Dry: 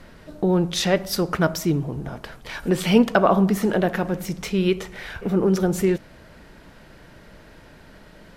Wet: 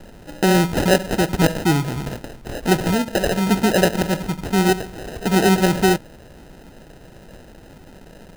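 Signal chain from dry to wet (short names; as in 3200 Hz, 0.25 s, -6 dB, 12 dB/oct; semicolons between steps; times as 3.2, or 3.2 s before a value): 2.8–3.47 compressor 5:1, threshold -21 dBFS, peak gain reduction 10.5 dB; sample-and-hold 39×; gain +4 dB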